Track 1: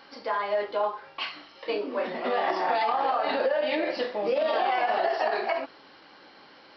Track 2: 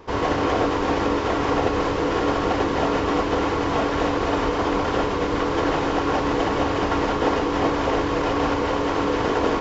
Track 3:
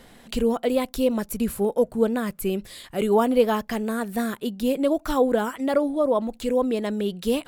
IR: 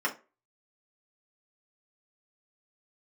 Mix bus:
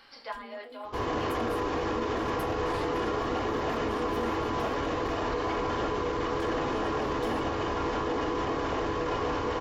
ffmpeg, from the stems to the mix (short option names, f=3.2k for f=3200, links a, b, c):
-filter_complex "[0:a]highpass=f=1.4k:p=1,volume=-1.5dB[a];[1:a]adelay=850,volume=-7dB,asplit=2[b][c];[c]volume=-11.5dB[d];[2:a]acompressor=threshold=-30dB:ratio=6,volume=1.5dB,afade=t=in:st=0.9:d=0.5:silence=0.334965,afade=t=out:st=4.92:d=0.22:silence=0.354813,afade=t=in:st=6.18:d=0.58:silence=0.251189,asplit=3[e][f][g];[f]volume=-4dB[h];[g]apad=whole_len=298232[i];[a][i]sidechaincompress=threshold=-55dB:ratio=8:attack=8.6:release=390[j];[3:a]atrim=start_sample=2205[k];[d][h]amix=inputs=2:normalize=0[l];[l][k]afir=irnorm=-1:irlink=0[m];[j][b][e][m]amix=inputs=4:normalize=0,alimiter=limit=-21.5dB:level=0:latency=1:release=13"